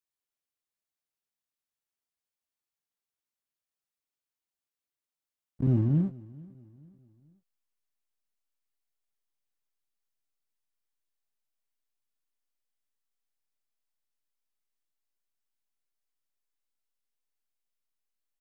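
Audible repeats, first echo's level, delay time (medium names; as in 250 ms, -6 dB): 2, -22.0 dB, 438 ms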